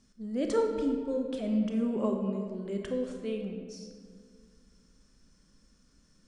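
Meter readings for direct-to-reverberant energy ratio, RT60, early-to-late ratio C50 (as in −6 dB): 3.0 dB, 2.0 s, 4.5 dB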